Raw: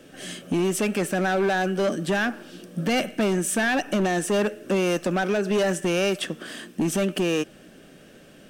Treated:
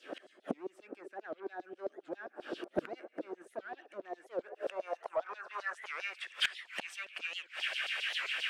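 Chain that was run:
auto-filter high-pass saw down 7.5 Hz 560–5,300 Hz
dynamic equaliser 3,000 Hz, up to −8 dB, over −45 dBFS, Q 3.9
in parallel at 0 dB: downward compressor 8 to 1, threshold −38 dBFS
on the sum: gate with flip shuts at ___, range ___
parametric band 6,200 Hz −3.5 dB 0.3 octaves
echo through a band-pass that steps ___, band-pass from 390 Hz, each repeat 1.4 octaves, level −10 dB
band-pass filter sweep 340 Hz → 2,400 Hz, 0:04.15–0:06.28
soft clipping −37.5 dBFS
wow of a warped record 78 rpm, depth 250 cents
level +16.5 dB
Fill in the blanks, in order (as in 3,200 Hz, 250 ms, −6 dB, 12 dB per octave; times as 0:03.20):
−25 dBFS, −24 dB, 406 ms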